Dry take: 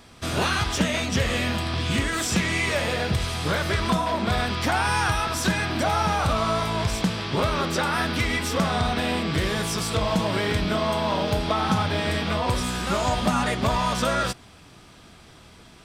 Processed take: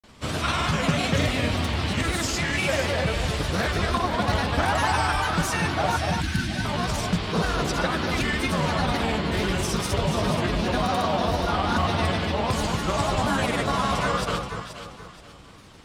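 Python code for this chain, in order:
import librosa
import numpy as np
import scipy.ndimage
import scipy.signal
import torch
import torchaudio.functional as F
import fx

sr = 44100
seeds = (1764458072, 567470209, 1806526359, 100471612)

y = fx.granulator(x, sr, seeds[0], grain_ms=100.0, per_s=20.0, spray_ms=100.0, spread_st=3)
y = fx.spec_erase(y, sr, start_s=5.97, length_s=0.68, low_hz=370.0, high_hz=1500.0)
y = fx.echo_alternate(y, sr, ms=239, hz=1300.0, feedback_pct=55, wet_db=-4.0)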